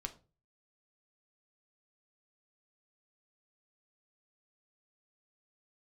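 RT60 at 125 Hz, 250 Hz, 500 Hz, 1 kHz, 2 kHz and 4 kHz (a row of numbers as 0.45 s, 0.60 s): 0.55 s, 0.40 s, 0.35 s, 0.30 s, 0.25 s, 0.25 s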